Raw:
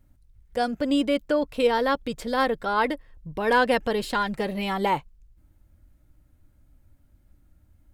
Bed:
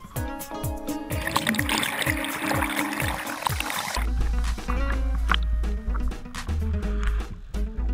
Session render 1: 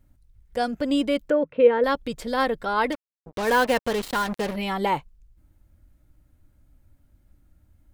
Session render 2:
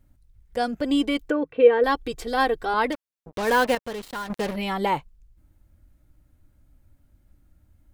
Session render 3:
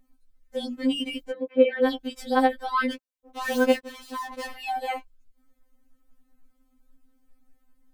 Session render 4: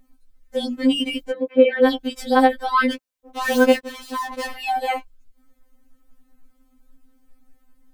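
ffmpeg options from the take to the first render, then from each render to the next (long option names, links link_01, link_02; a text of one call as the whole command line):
ffmpeg -i in.wav -filter_complex "[0:a]asettb=1/sr,asplit=3[link_01][link_02][link_03];[link_01]atrim=end=1.304[link_04];[link_02]atrim=start=1.3:end=1.84,asetpts=PTS-STARTPTS,afade=type=in:duration=0.004:curve=qsin,afade=type=out:start_time=0.536:duration=0.004:curve=qsin,highpass=150,equalizer=frequency=160:width_type=q:width=4:gain=10,equalizer=frequency=520:width_type=q:width=4:gain=9,equalizer=frequency=740:width_type=q:width=4:gain=-8,equalizer=frequency=1100:width_type=q:width=4:gain=-4,lowpass=frequency=2400:width=0.5412,lowpass=frequency=2400:width=1.3066[link_05];[link_03]atrim=start=1.836[link_06];[link_04][link_05]acrossfade=duration=0.004:curve1=hsin:curve2=qsin[link_07];[link_07][link_06]acrossfade=duration=0.004:curve1=qsin:curve2=hsin,asettb=1/sr,asplit=3[link_08][link_09][link_10];[link_08]atrim=end=2.924[link_11];[link_09]atrim=start=2.92:end=4.56,asetpts=PTS-STARTPTS,afade=type=in:duration=0.004:curve=qsin,afade=type=out:start_time=1.636:duration=0.004:curve=qsin,acrusher=bits=4:mix=0:aa=0.5[link_12];[link_10]atrim=start=4.556[link_13];[link_11][link_12]acrossfade=duration=0.004:curve1=hsin:curve2=qsin[link_14];[link_14][link_13]acrossfade=duration=0.004:curve1=qsin:curve2=hsin" out.wav
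ffmpeg -i in.wav -filter_complex "[0:a]asettb=1/sr,asplit=3[link_01][link_02][link_03];[link_01]atrim=end=0.844[link_04];[link_02]atrim=start=0.84:end=2.74,asetpts=PTS-STARTPTS,afade=type=in:duration=0.004:curve=qsin,afade=type=out:start_time=1.896:duration=0.004:curve=qsin,aecho=1:1:2.6:0.65,atrim=end_sample=83790[link_05];[link_03]atrim=start=2.736[link_06];[link_04][link_05]acrossfade=duration=0.004:curve1=hsin:curve2=qsin[link_07];[link_07][link_06]acrossfade=duration=0.004:curve1=qsin:curve2=hsin,asplit=3[link_08][link_09][link_10];[link_08]atrim=end=3.752[link_11];[link_09]atrim=start=3.748:end=4.302,asetpts=PTS-STARTPTS,volume=-7.5dB[link_12];[link_10]atrim=start=4.298[link_13];[link_11][link_12]acrossfade=duration=0.004:curve1=hsin:curve2=hsin[link_14];[link_14][link_13]acrossfade=duration=0.004:curve1=hsin:curve2=hsin" out.wav
ffmpeg -i in.wav -af "afftfilt=real='re*3.46*eq(mod(b,12),0)':imag='im*3.46*eq(mod(b,12),0)':win_size=2048:overlap=0.75" out.wav
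ffmpeg -i in.wav -af "volume=6.5dB,alimiter=limit=-3dB:level=0:latency=1" out.wav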